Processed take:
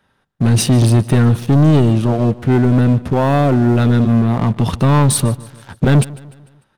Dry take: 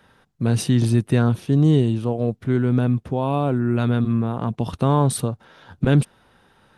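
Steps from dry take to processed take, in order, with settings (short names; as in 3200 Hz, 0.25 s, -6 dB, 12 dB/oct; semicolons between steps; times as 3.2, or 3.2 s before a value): notch 480 Hz, Q 12; sample leveller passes 3; on a send: feedback echo 0.149 s, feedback 48%, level -20 dB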